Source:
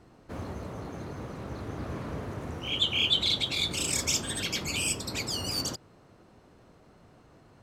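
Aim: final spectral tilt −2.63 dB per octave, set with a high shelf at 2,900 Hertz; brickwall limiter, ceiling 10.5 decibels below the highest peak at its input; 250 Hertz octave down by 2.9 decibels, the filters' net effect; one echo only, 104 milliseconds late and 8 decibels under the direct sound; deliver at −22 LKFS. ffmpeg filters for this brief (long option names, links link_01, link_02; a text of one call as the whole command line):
ffmpeg -i in.wav -af "equalizer=frequency=250:width_type=o:gain=-4,highshelf=frequency=2900:gain=6.5,alimiter=limit=-19dB:level=0:latency=1,aecho=1:1:104:0.398,volume=6dB" out.wav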